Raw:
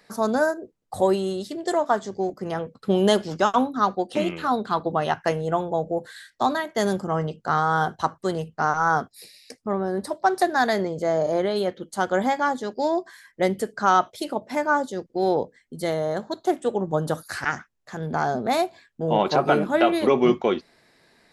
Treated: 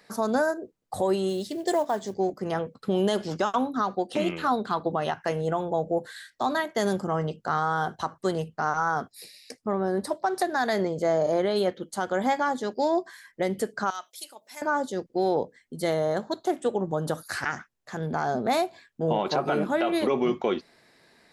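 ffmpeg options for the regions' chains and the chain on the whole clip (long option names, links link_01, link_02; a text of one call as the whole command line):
ffmpeg -i in.wav -filter_complex "[0:a]asettb=1/sr,asplit=3[link_01][link_02][link_03];[link_01]atrim=end=1.294[link_04];[link_02]atrim=start=1.29:end=2.14,asetpts=PTS-STARTPTS,afade=type=in:duration=0.004:curve=qsin,afade=type=out:start_time=0.846:duration=0.004:curve=qsin,equalizer=frequency=1300:width_type=o:width=0.36:gain=-12,bandreject=frequency=89.05:width_type=h:width=4,bandreject=frequency=178.1:width_type=h:width=4,bandreject=frequency=267.15:width_type=h:width=4,acrusher=bits=7:mode=log:mix=0:aa=0.000001[link_05];[link_03]atrim=start=2.136[link_06];[link_04][link_05]acrossfade=duration=0.004:curve1=hsin:curve2=qsin[link_07];[link_07][link_06]acrossfade=duration=0.004:curve1=qsin:curve2=hsin,asettb=1/sr,asplit=3[link_08][link_09][link_10];[link_08]atrim=end=13.904[link_11];[link_09]atrim=start=13.9:end=14.62,asetpts=PTS-STARTPTS,afade=type=in:duration=0.004:curve=qsin,afade=type=out:start_time=0.716:duration=0.004:curve=qsin,aderivative,acompressor=mode=upward:threshold=-45dB:ratio=2.5:attack=3.2:release=140:knee=2.83:detection=peak[link_12];[link_10]atrim=start=14.616[link_13];[link_11][link_12]acrossfade=duration=0.004:curve1=hsin:curve2=qsin[link_14];[link_14][link_13]acrossfade=duration=0.004:curve1=qsin:curve2=hsin,lowshelf=frequency=70:gain=-6,alimiter=limit=-15dB:level=0:latency=1:release=127" out.wav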